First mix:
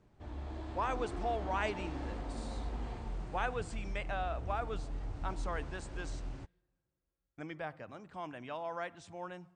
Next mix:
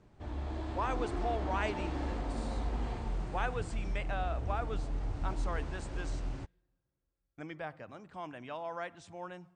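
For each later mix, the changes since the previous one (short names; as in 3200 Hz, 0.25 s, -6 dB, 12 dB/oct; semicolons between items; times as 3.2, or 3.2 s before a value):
background +4.5 dB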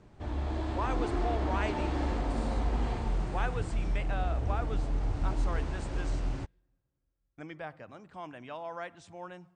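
background +5.0 dB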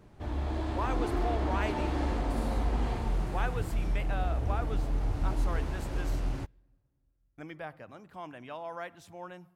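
background: send +8.0 dB; master: remove steep low-pass 9100 Hz 96 dB/oct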